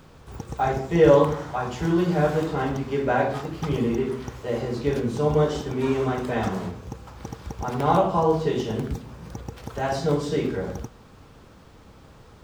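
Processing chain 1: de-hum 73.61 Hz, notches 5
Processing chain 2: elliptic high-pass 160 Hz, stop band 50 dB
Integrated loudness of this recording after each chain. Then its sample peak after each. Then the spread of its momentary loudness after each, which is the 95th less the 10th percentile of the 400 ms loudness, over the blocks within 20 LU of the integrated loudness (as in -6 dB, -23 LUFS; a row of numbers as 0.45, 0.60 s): -24.5, -24.5 LUFS; -4.0, -4.5 dBFS; 18, 20 LU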